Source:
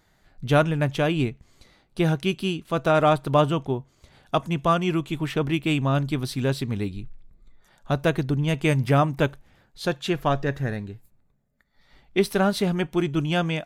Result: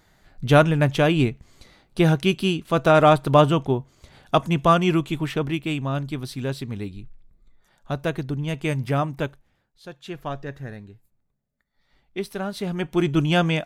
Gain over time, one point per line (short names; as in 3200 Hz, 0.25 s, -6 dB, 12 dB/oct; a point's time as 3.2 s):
4.93 s +4 dB
5.76 s -3.5 dB
9.17 s -3.5 dB
9.84 s -15.5 dB
10.19 s -8 dB
12.49 s -8 dB
13.08 s +4 dB